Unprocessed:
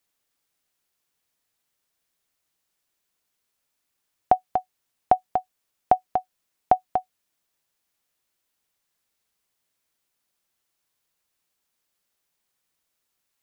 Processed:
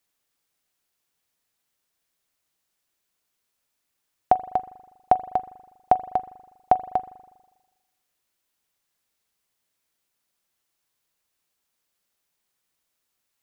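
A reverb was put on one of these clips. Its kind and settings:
spring reverb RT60 1.2 s, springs 40 ms, chirp 65 ms, DRR 15.5 dB

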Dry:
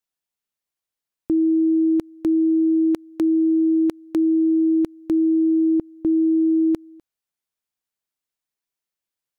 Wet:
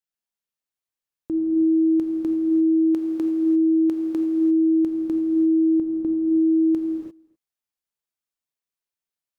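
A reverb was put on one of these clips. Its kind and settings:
reverb whose tail is shaped and stops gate 370 ms flat, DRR 1 dB
level −6.5 dB

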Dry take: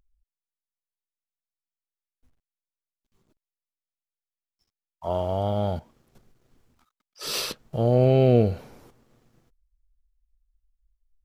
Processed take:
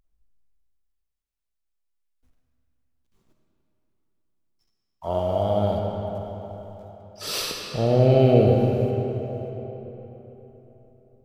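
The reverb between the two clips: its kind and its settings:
comb and all-pass reverb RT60 4 s, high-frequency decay 0.65×, pre-delay 10 ms, DRR 0.5 dB

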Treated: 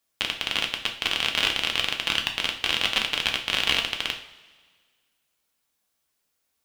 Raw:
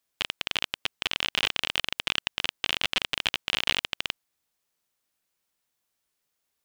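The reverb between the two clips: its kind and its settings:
coupled-rooms reverb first 0.41 s, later 1.7 s, from −17 dB, DRR 2 dB
level +1.5 dB

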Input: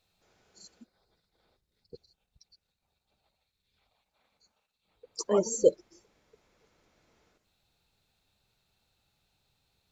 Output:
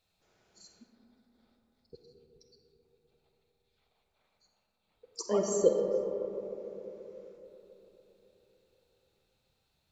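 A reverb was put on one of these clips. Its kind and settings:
comb and all-pass reverb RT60 3.9 s, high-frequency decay 0.3×, pre-delay 5 ms, DRR 2.5 dB
level −3.5 dB

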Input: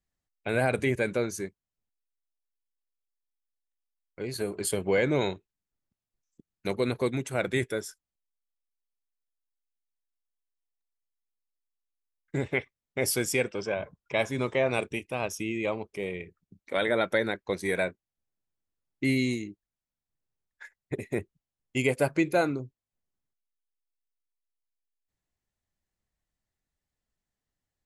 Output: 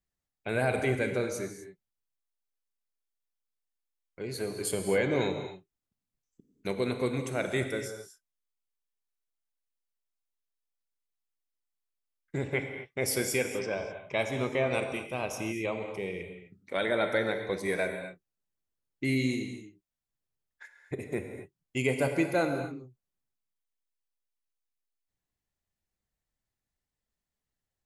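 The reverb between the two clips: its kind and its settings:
reverb whose tail is shaped and stops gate 280 ms flat, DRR 5.5 dB
level −3 dB

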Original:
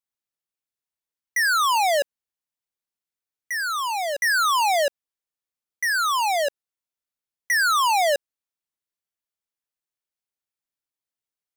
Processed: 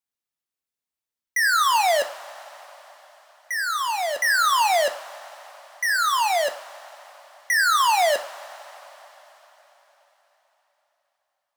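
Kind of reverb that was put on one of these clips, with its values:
coupled-rooms reverb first 0.41 s, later 4.4 s, from −18 dB, DRR 7.5 dB

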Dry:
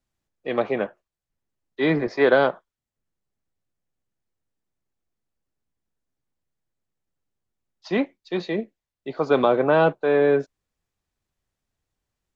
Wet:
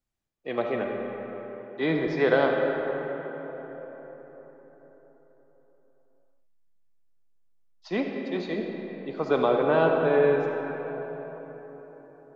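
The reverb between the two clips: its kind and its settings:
comb and all-pass reverb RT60 4.7 s, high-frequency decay 0.45×, pre-delay 15 ms, DRR 1.5 dB
level −5.5 dB

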